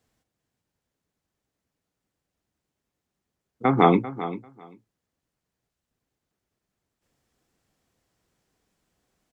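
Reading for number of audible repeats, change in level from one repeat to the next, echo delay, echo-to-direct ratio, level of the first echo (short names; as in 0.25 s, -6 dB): 2, -16.5 dB, 0.393 s, -14.0 dB, -14.0 dB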